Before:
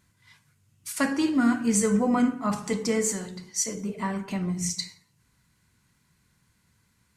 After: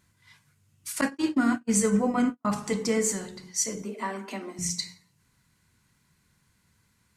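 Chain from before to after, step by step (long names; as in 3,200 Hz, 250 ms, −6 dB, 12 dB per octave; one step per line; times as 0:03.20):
0:03.82–0:04.59: Butterworth high-pass 210 Hz 96 dB per octave
mains-hum notches 60/120/180/240/300 Hz
0:01.01–0:02.45: noise gate −24 dBFS, range −46 dB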